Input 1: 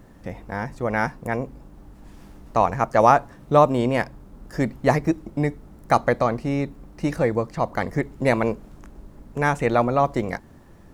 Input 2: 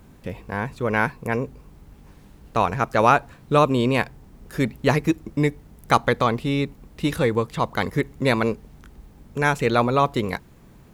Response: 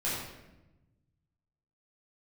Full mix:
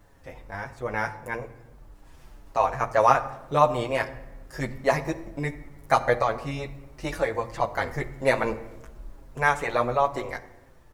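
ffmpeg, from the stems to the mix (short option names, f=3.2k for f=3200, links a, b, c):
-filter_complex "[0:a]asplit=2[a][b];[b]adelay=6.5,afreqshift=-2.1[c];[a][c]amix=inputs=2:normalize=1,volume=-1.5dB,asplit=2[d][e];[e]volume=-18dB[f];[1:a]volume=-1,adelay=17,volume=-16dB[g];[2:a]atrim=start_sample=2205[h];[f][h]afir=irnorm=-1:irlink=0[i];[d][g][i]amix=inputs=3:normalize=0,equalizer=f=200:w=0.78:g=-11.5,dynaudnorm=f=960:g=5:m=4dB"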